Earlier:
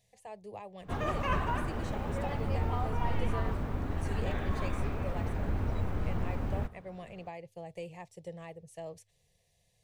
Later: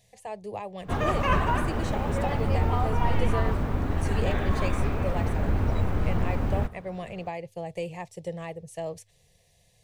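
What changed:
speech +9.0 dB
background +7.0 dB

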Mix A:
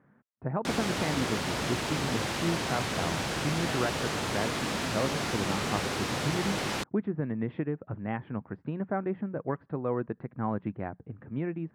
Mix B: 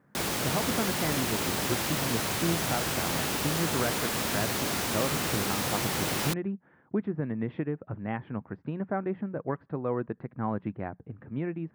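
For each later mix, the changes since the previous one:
background: entry −0.50 s
master: remove high-frequency loss of the air 62 metres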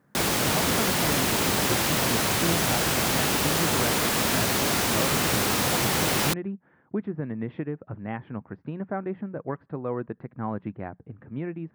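background +6.0 dB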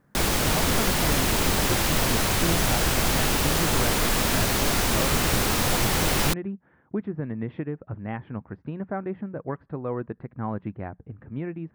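master: remove high-pass filter 110 Hz 12 dB per octave

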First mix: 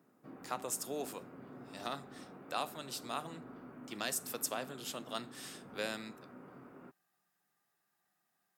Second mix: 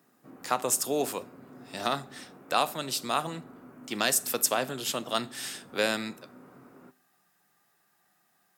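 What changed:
speech +11.5 dB
background: send on

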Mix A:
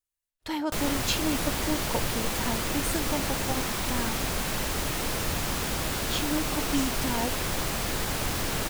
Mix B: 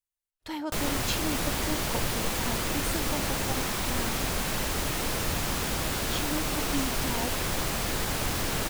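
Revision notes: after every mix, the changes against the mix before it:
speech −4.0 dB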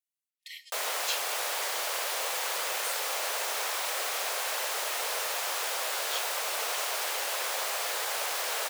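speech: add linear-phase brick-wall high-pass 1,800 Hz
master: add Butterworth high-pass 490 Hz 36 dB per octave

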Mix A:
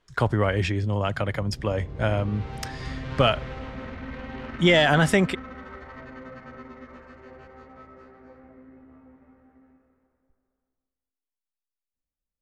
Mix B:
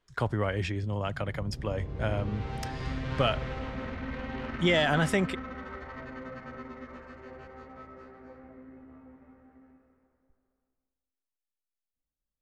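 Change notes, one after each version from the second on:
speech −6.5 dB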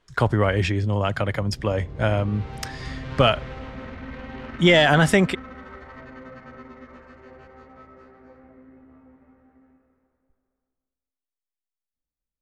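speech +9.0 dB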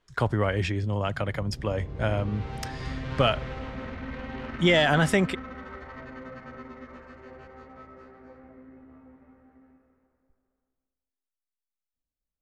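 speech −5.0 dB

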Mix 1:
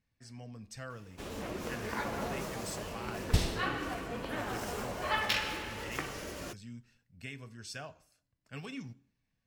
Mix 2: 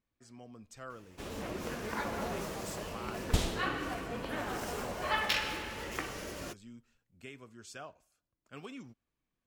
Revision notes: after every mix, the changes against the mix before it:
speech −4.5 dB
reverb: off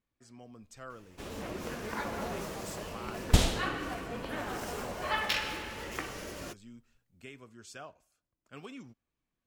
second sound +6.5 dB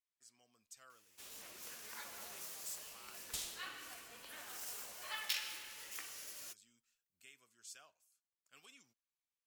second sound −8.0 dB
master: add first-order pre-emphasis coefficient 0.97

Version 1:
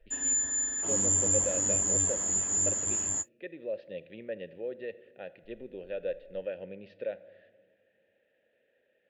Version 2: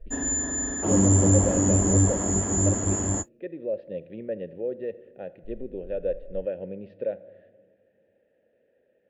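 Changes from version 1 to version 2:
background +9.0 dB
master: add tilt shelving filter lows +9.5 dB, about 1,200 Hz

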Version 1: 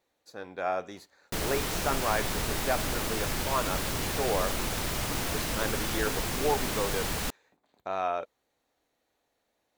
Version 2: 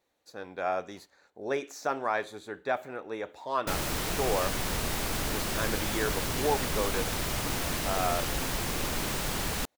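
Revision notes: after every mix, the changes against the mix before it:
background: entry +2.35 s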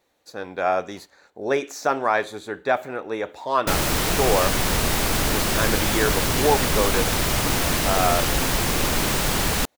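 speech +8.5 dB
background +9.5 dB

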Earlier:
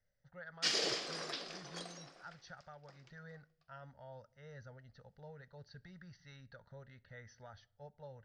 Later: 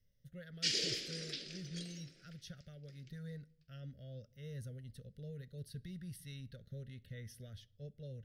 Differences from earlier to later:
speech: remove Chebyshev low-pass with heavy ripple 6,200 Hz, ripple 9 dB
master: add Butterworth band-reject 920 Hz, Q 0.55

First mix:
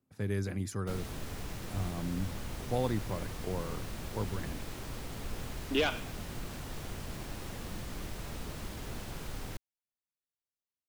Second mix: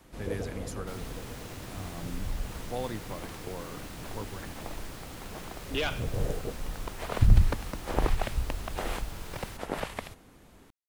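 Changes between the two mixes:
first sound: unmuted
master: add low-shelf EQ 330 Hz −8 dB

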